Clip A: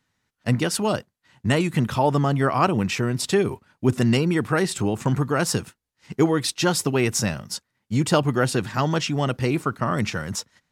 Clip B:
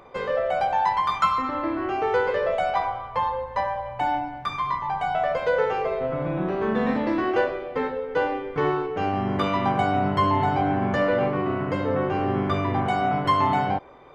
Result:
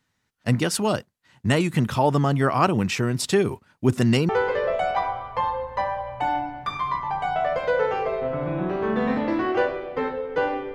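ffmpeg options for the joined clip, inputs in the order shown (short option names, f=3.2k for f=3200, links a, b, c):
-filter_complex "[0:a]apad=whole_dur=10.74,atrim=end=10.74,atrim=end=4.292[a];[1:a]atrim=start=2.078:end=8.53[b];[a][b]acrossfade=d=0.004:c1=hsin:c2=hsin"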